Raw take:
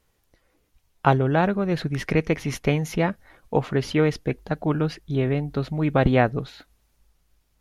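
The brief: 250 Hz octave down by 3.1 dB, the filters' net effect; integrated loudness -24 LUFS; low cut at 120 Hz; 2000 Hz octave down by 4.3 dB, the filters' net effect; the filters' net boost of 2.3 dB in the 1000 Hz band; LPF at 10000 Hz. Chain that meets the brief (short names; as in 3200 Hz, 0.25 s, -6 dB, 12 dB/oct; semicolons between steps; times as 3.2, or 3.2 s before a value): HPF 120 Hz; LPF 10000 Hz; bell 250 Hz -4 dB; bell 1000 Hz +5 dB; bell 2000 Hz -7.5 dB; gain +1 dB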